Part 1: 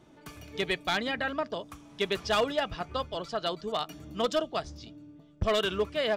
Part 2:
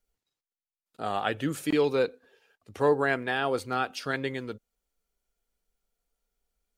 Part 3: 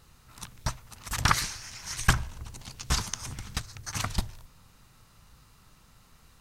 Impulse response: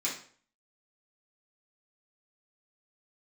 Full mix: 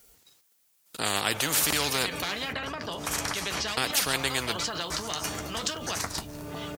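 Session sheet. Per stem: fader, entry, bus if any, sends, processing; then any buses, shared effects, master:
-2.0 dB, 1.35 s, bus A, no send, notch 3500 Hz, Q 17; backwards sustainer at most 36 dB/s
+2.0 dB, 0.00 s, muted 2.53–3.77, no bus, no send, high shelf 5300 Hz +9.5 dB
-4.0 dB, 2.00 s, bus A, no send, bell 3000 Hz -11.5 dB 0.77 oct; auto duck -18 dB, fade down 0.45 s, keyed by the second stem
bus A: 0.0 dB, flange 1.5 Hz, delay 9.8 ms, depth 4.1 ms, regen -46%; compressor 10:1, threshold -40 dBFS, peak gain reduction 15 dB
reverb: off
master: HPF 61 Hz; spectral compressor 4:1

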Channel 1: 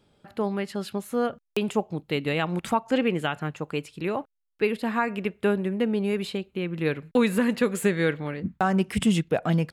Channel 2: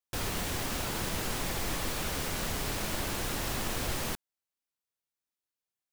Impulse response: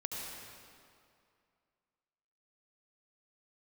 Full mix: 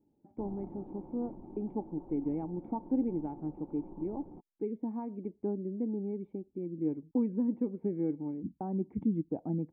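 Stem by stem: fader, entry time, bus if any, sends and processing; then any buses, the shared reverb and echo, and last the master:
+0.5 dB, 0.00 s, no send, dry
0.0 dB, 0.25 s, no send, moving spectral ripple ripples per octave 1.3, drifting +1.1 Hz, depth 10 dB; comb 5.5 ms, depth 43%; sample-and-hold 22×; auto duck -6 dB, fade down 1.40 s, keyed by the first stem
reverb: off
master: spectral gate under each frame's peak -30 dB strong; vocal tract filter u

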